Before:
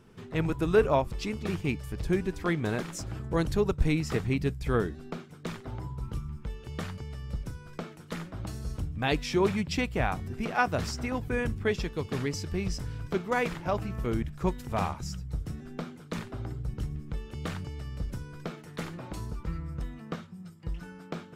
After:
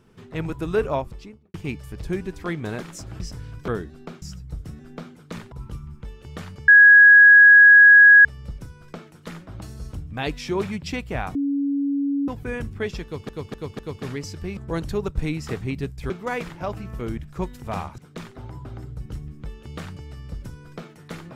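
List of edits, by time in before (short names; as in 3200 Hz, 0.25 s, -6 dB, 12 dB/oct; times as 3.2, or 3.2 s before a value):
0.93–1.54 studio fade out
3.2–4.73 swap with 12.67–13.15
5.27–5.94 swap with 15.03–16.33
7.1 add tone 1660 Hz -6.5 dBFS 1.57 s
10.2–11.13 bleep 281 Hz -20 dBFS
11.89–12.14 loop, 4 plays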